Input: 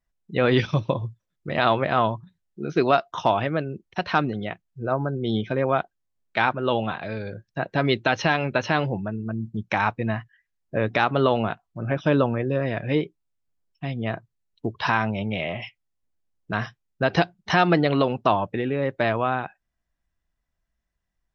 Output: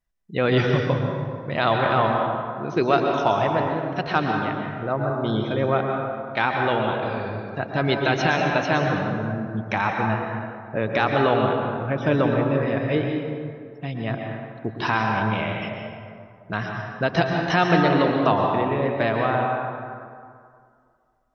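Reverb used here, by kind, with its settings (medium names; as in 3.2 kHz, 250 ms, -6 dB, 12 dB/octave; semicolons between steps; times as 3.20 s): plate-style reverb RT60 2.2 s, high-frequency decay 0.5×, pre-delay 105 ms, DRR 1 dB; trim -1 dB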